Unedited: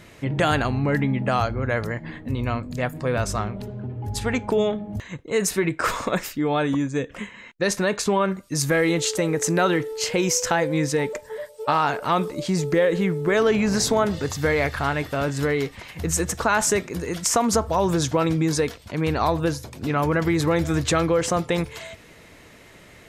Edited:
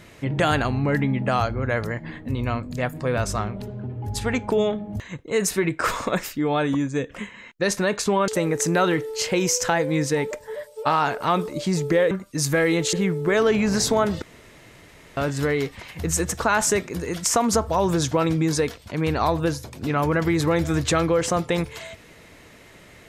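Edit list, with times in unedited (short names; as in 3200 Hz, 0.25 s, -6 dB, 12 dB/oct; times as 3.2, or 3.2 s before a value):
8.28–9.1 move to 12.93
14.22–15.17 room tone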